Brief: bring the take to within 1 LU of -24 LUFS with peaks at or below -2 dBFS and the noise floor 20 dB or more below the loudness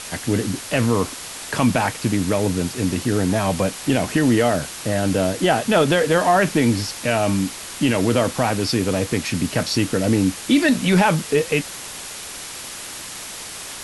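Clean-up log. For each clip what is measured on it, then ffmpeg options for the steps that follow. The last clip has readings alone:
noise floor -34 dBFS; noise floor target -40 dBFS; loudness -20.0 LUFS; peak level -5.5 dBFS; loudness target -24.0 LUFS
-> -af "afftdn=nr=6:nf=-34"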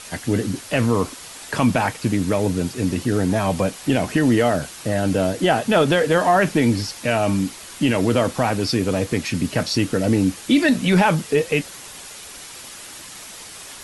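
noise floor -38 dBFS; noise floor target -40 dBFS
-> -af "afftdn=nr=6:nf=-38"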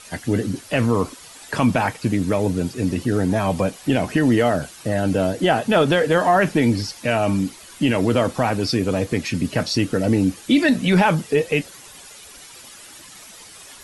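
noise floor -43 dBFS; loudness -20.5 LUFS; peak level -6.0 dBFS; loudness target -24.0 LUFS
-> -af "volume=0.668"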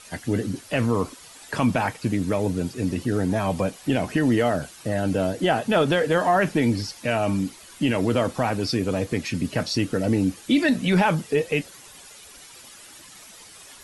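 loudness -24.0 LUFS; peak level -9.5 dBFS; noise floor -46 dBFS

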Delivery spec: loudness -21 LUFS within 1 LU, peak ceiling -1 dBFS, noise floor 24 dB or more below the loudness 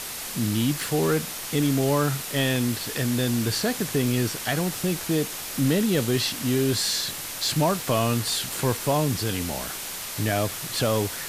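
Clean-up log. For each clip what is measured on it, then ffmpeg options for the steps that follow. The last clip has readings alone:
noise floor -34 dBFS; noise floor target -49 dBFS; loudness -24.5 LUFS; peak level -10.0 dBFS; loudness target -21.0 LUFS
-> -af "afftdn=nr=15:nf=-34"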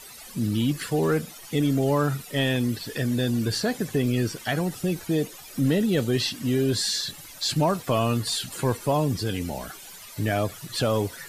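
noise floor -44 dBFS; noise floor target -50 dBFS
-> -af "afftdn=nr=6:nf=-44"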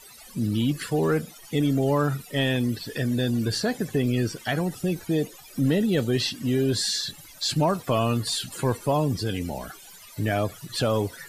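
noise floor -47 dBFS; noise floor target -50 dBFS
-> -af "afftdn=nr=6:nf=-47"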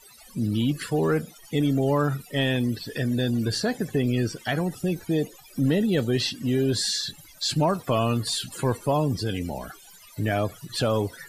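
noise floor -50 dBFS; loudness -25.5 LUFS; peak level -11.0 dBFS; loudness target -21.0 LUFS
-> -af "volume=1.68"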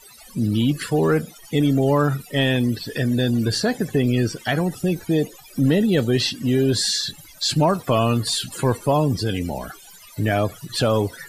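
loudness -21.0 LUFS; peak level -6.5 dBFS; noise floor -46 dBFS

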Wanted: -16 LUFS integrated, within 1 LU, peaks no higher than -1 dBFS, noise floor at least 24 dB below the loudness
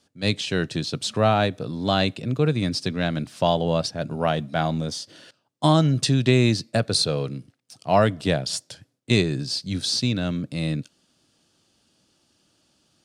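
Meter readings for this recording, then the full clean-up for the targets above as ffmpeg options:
loudness -23.5 LUFS; peak level -4.5 dBFS; loudness target -16.0 LUFS
-> -af "volume=2.37,alimiter=limit=0.891:level=0:latency=1"

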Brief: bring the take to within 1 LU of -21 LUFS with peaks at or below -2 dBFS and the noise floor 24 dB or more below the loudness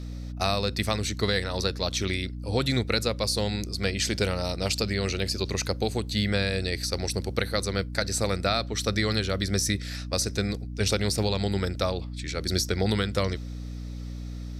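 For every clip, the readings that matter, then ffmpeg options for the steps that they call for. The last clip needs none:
hum 60 Hz; highest harmonic 300 Hz; hum level -33 dBFS; loudness -27.5 LUFS; peak level -9.5 dBFS; loudness target -21.0 LUFS
-> -af "bandreject=f=60:t=h:w=4,bandreject=f=120:t=h:w=4,bandreject=f=180:t=h:w=4,bandreject=f=240:t=h:w=4,bandreject=f=300:t=h:w=4"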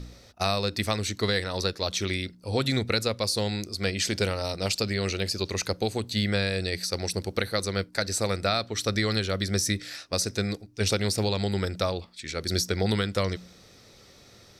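hum not found; loudness -28.0 LUFS; peak level -10.0 dBFS; loudness target -21.0 LUFS
-> -af "volume=2.24"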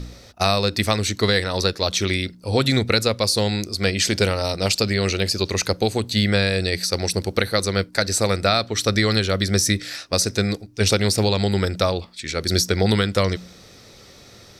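loudness -21.0 LUFS; peak level -3.0 dBFS; noise floor -47 dBFS

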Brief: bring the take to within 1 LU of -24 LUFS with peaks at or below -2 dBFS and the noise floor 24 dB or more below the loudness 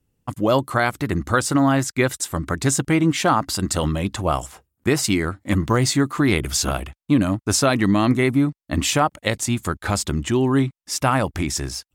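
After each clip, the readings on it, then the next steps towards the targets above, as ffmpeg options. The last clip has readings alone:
loudness -21.0 LUFS; peak level -6.0 dBFS; loudness target -24.0 LUFS
-> -af "volume=0.708"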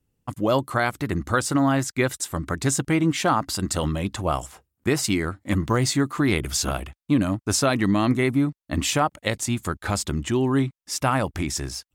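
loudness -24.0 LUFS; peak level -9.0 dBFS; noise floor -82 dBFS

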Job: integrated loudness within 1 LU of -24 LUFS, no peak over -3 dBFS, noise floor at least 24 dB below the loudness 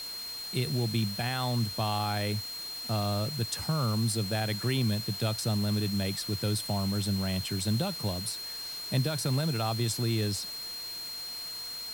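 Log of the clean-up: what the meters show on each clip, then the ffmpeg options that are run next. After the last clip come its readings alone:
steady tone 4.2 kHz; tone level -37 dBFS; noise floor -39 dBFS; noise floor target -55 dBFS; loudness -30.5 LUFS; peak level -16.0 dBFS; loudness target -24.0 LUFS
-> -af "bandreject=f=4200:w=30"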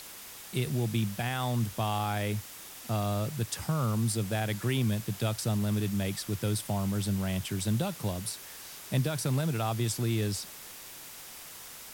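steady tone not found; noise floor -46 dBFS; noise floor target -55 dBFS
-> -af "afftdn=nr=9:nf=-46"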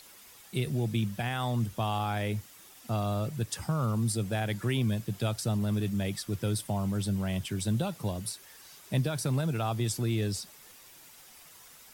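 noise floor -54 dBFS; noise floor target -56 dBFS
-> -af "afftdn=nr=6:nf=-54"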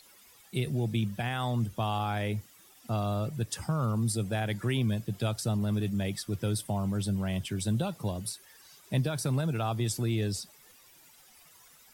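noise floor -58 dBFS; loudness -31.5 LUFS; peak level -16.5 dBFS; loudness target -24.0 LUFS
-> -af "volume=2.37"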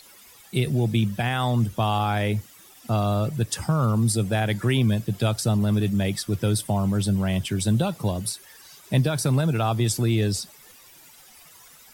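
loudness -24.0 LUFS; peak level -9.0 dBFS; noise floor -50 dBFS

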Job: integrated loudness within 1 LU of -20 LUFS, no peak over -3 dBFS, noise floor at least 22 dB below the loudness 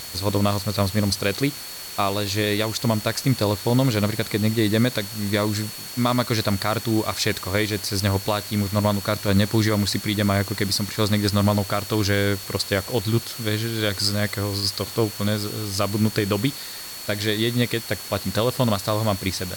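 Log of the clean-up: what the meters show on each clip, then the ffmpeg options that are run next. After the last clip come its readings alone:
steady tone 4.4 kHz; tone level -38 dBFS; noise floor -35 dBFS; noise floor target -45 dBFS; loudness -23.0 LUFS; peak level -8.5 dBFS; loudness target -20.0 LUFS
-> -af "bandreject=f=4400:w=30"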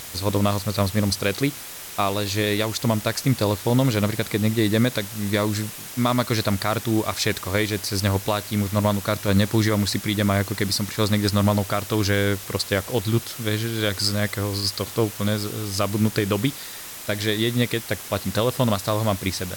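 steady tone not found; noise floor -37 dBFS; noise floor target -45 dBFS
-> -af "afftdn=nr=8:nf=-37"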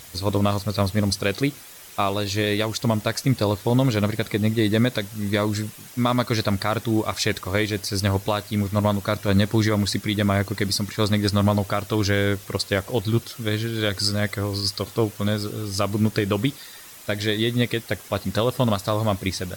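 noise floor -43 dBFS; noise floor target -46 dBFS
-> -af "afftdn=nr=6:nf=-43"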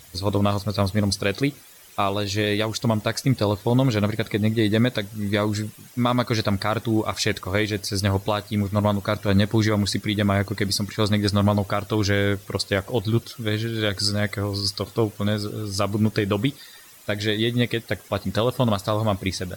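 noise floor -47 dBFS; loudness -23.5 LUFS; peak level -8.5 dBFS; loudness target -20.0 LUFS
-> -af "volume=1.5"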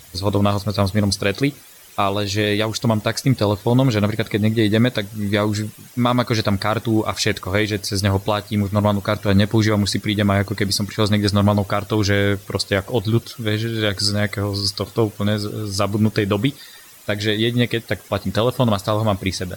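loudness -20.0 LUFS; peak level -5.0 dBFS; noise floor -44 dBFS

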